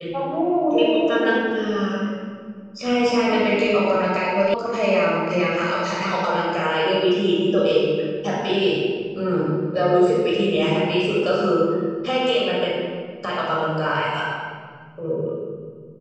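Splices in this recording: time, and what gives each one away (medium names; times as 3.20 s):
4.54 s: sound stops dead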